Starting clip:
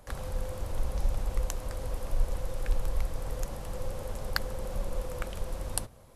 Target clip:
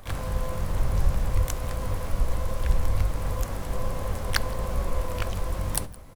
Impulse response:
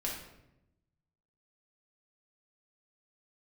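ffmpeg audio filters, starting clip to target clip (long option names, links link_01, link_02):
-filter_complex "[0:a]aecho=1:1:167:0.0668,asplit=2[link_01][link_02];[1:a]atrim=start_sample=2205,asetrate=52920,aresample=44100,lowshelf=frequency=360:gain=7.5[link_03];[link_02][link_03]afir=irnorm=-1:irlink=0,volume=-21dB[link_04];[link_01][link_04]amix=inputs=2:normalize=0,asplit=3[link_05][link_06][link_07];[link_06]asetrate=55563,aresample=44100,atempo=0.793701,volume=-9dB[link_08];[link_07]asetrate=88200,aresample=44100,atempo=0.5,volume=-4dB[link_09];[link_05][link_08][link_09]amix=inputs=3:normalize=0,volume=3dB"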